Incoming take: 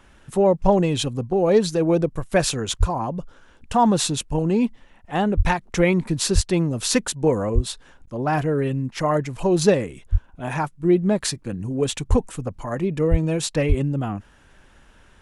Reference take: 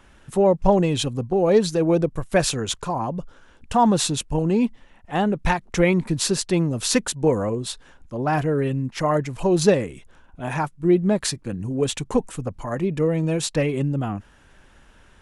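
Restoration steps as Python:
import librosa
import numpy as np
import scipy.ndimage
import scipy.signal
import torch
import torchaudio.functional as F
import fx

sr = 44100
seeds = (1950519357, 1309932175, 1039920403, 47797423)

y = fx.fix_deplosive(x, sr, at_s=(2.79, 5.36, 6.34, 7.54, 10.11, 12.09, 13.1, 13.68))
y = fx.fix_interpolate(y, sr, at_s=(8.06,), length_ms=11.0)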